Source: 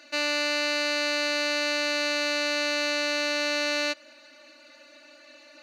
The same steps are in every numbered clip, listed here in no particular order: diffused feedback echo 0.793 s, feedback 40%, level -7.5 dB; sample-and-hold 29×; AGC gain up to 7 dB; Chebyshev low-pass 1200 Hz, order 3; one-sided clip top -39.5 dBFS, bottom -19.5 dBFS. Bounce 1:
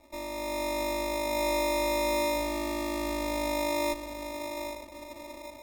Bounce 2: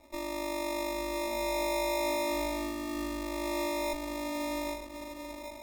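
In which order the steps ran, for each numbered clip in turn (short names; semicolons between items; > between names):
Chebyshev low-pass > one-sided clip > AGC > diffused feedback echo > sample-and-hold; AGC > diffused feedback echo > one-sided clip > Chebyshev low-pass > sample-and-hold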